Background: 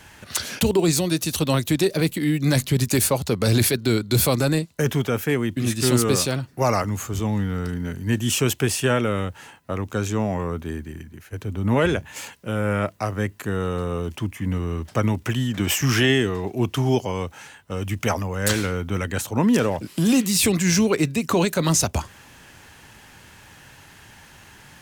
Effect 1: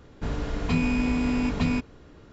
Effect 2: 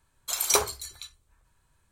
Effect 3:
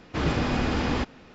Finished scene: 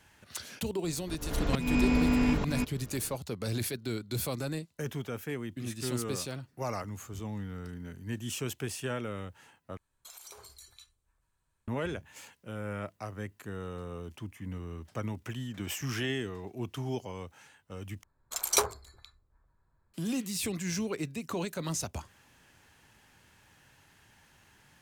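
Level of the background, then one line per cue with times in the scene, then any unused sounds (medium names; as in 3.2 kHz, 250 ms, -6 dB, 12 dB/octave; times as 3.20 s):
background -14.5 dB
0.84 s: add 1 -0.5 dB + slow attack 230 ms
9.77 s: replace with 2 -11 dB + compression 8:1, threshold -35 dBFS
18.03 s: replace with 2 -3 dB + local Wiener filter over 15 samples
not used: 3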